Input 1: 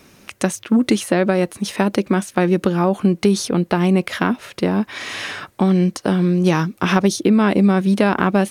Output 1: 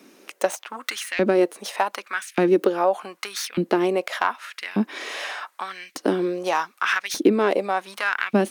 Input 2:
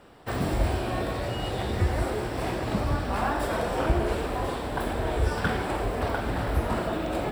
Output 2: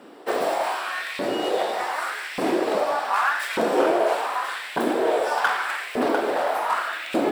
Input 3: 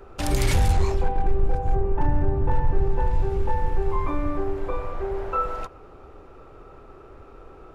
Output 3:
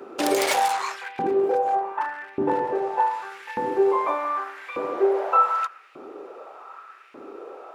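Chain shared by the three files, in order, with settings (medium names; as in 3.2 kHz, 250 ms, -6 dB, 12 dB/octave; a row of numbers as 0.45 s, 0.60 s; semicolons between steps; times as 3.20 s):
tracing distortion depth 0.052 ms; high-pass 170 Hz 12 dB/octave; LFO high-pass saw up 0.84 Hz 230–2400 Hz; normalise loudness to -24 LUFS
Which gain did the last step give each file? -4.5 dB, +4.5 dB, +4.5 dB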